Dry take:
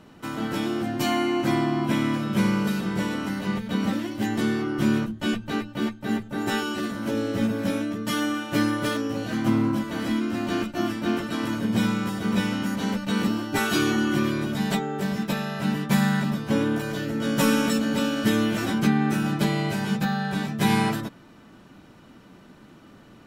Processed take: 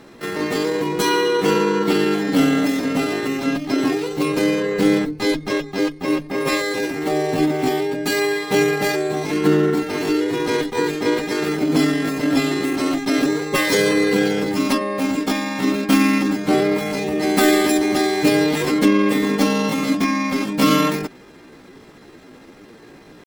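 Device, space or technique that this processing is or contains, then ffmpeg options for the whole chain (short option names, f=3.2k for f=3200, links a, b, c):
chipmunk voice: -af "asetrate=60591,aresample=44100,atempo=0.727827,volume=6dB"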